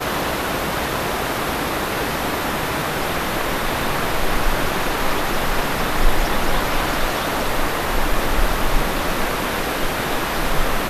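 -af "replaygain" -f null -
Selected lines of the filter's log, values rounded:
track_gain = +6.0 dB
track_peak = 0.492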